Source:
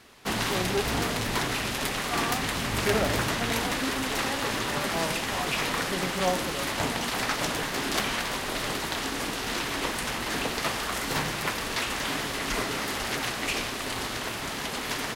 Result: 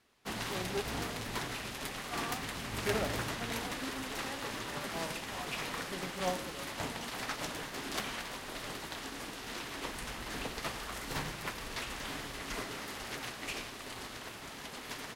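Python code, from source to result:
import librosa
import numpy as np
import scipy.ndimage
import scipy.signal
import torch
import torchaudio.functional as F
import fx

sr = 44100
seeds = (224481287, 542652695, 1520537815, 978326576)

y = fx.low_shelf(x, sr, hz=71.0, db=9.5, at=(9.88, 12.43))
y = y + 10.0 ** (-15.5 / 20.0) * np.pad(y, (int(108 * sr / 1000.0), 0))[:len(y)]
y = fx.upward_expand(y, sr, threshold_db=-42.0, expansion=1.5)
y = y * 10.0 ** (-7.0 / 20.0)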